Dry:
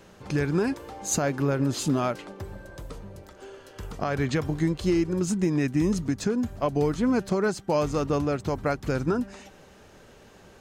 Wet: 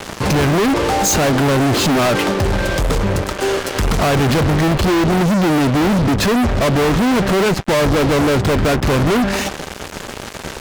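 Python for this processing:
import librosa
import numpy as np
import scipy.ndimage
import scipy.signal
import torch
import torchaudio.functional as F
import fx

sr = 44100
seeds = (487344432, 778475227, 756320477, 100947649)

y = fx.env_lowpass_down(x, sr, base_hz=2000.0, full_db=-22.5)
y = fx.fuzz(y, sr, gain_db=47.0, gate_db=-49.0)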